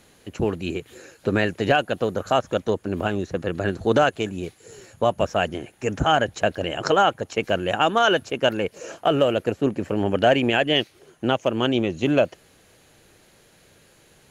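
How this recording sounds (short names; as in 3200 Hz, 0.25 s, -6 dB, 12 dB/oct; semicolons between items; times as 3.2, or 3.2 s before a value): noise floor -56 dBFS; spectral tilt -3.5 dB/oct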